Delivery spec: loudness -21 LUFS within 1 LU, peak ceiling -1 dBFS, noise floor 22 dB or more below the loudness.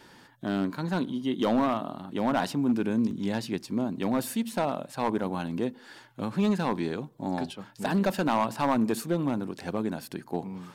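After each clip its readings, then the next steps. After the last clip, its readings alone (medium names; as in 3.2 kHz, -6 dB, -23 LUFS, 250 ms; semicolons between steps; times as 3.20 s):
clipped samples 0.8%; clipping level -18.0 dBFS; dropouts 1; longest dropout 1.4 ms; loudness -29.5 LUFS; peak level -18.0 dBFS; loudness target -21.0 LUFS
-> clip repair -18 dBFS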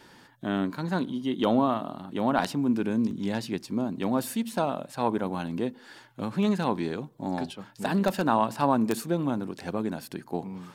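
clipped samples 0.0%; dropouts 1; longest dropout 1.4 ms
-> interpolate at 3.11 s, 1.4 ms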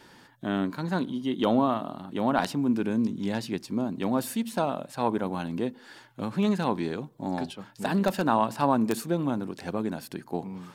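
dropouts 0; loudness -28.5 LUFS; peak level -9.0 dBFS; loudness target -21.0 LUFS
-> trim +7.5 dB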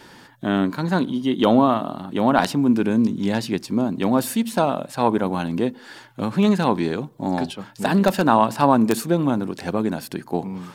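loudness -21.0 LUFS; peak level -1.5 dBFS; noise floor -47 dBFS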